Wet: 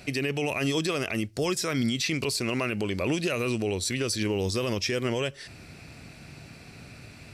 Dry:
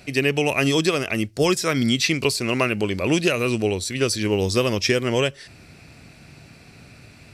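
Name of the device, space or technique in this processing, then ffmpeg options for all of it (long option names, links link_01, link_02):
stacked limiters: -af "alimiter=limit=-12.5dB:level=0:latency=1:release=21,alimiter=limit=-18dB:level=0:latency=1:release=187"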